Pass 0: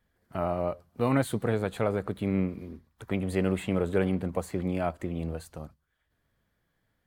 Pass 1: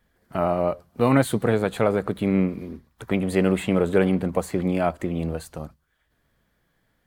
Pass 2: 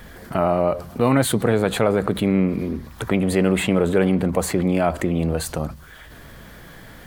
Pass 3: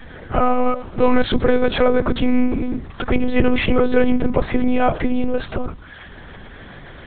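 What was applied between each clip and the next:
peaking EQ 94 Hz -7.5 dB 0.38 oct; trim +7 dB
level flattener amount 50%
monotone LPC vocoder at 8 kHz 250 Hz; trim +4 dB

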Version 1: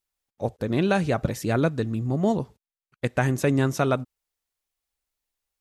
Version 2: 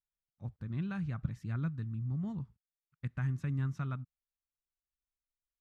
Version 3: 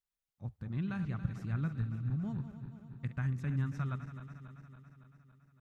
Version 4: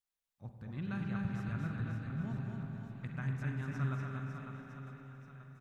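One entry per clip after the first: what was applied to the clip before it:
FFT filter 160 Hz 0 dB, 480 Hz -25 dB, 690 Hz -22 dB, 1.2 kHz -8 dB, 8 kHz -22 dB, 12 kHz -27 dB; trim -7.5 dB
backward echo that repeats 140 ms, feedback 79%, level -11 dB
bass shelf 230 Hz -6.5 dB; on a send: reverse bouncing-ball echo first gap 240 ms, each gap 1.3×, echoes 5; on the sum: spring tank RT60 3.4 s, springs 45/50 ms, chirp 55 ms, DRR 3.5 dB; trim -1 dB

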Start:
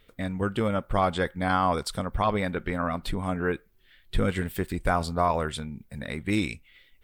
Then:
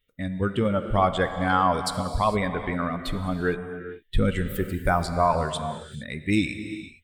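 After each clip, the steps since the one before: expander on every frequency bin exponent 1.5; gated-style reverb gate 480 ms flat, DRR 8 dB; trim +4.5 dB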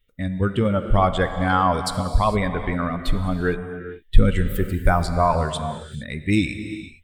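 bass shelf 73 Hz +11.5 dB; trim +2 dB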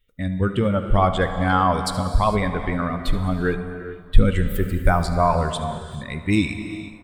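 delay 75 ms -17 dB; plate-style reverb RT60 4.3 s, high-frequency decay 0.55×, DRR 16.5 dB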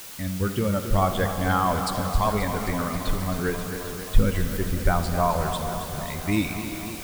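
added noise white -36 dBFS; modulated delay 266 ms, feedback 76%, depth 72 cents, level -11 dB; trim -4.5 dB

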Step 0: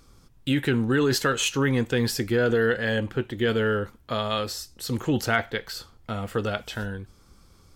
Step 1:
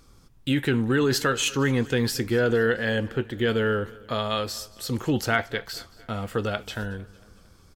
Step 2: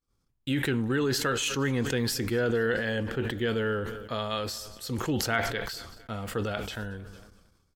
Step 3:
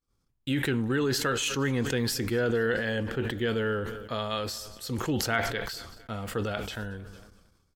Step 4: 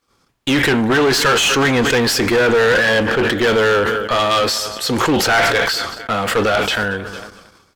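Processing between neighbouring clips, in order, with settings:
feedback delay 227 ms, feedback 54%, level -22 dB
expander -41 dBFS; decay stretcher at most 45 dB/s; trim -5 dB
no audible change
overdrive pedal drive 24 dB, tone 3.1 kHz, clips at -10 dBFS; one-sided clip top -21 dBFS; trim +7 dB

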